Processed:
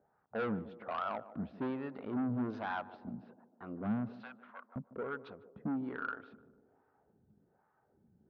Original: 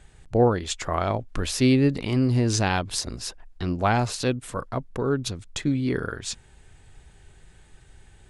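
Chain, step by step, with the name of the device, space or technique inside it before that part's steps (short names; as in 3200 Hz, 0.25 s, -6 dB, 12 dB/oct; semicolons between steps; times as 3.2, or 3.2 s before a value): wah-wah guitar rig (wah 1.2 Hz 200–1100 Hz, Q 2.1; tube stage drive 29 dB, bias 0.2; speaker cabinet 85–4000 Hz, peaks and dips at 210 Hz +7 dB, 360 Hz -4 dB, 1400 Hz +8 dB); low-pass opened by the level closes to 900 Hz, open at -33 dBFS; 4.13–4.76 steep high-pass 770 Hz 36 dB/oct; air absorption 68 m; narrowing echo 0.15 s, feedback 63%, band-pass 430 Hz, level -13 dB; gain -3.5 dB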